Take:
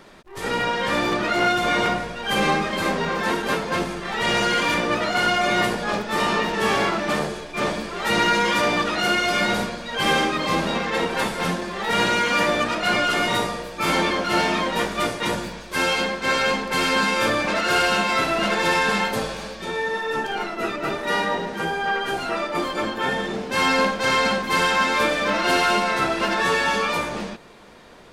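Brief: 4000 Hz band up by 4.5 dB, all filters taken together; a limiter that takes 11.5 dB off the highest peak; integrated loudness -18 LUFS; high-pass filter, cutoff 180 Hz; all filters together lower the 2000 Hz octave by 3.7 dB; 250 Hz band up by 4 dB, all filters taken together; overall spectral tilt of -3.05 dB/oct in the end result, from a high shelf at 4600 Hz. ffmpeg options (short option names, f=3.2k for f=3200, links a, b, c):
-af "highpass=180,equalizer=f=250:t=o:g=7,equalizer=f=2k:t=o:g=-7.5,equalizer=f=4k:t=o:g=6.5,highshelf=f=4.6k:g=4.5,volume=8.5dB,alimiter=limit=-10dB:level=0:latency=1"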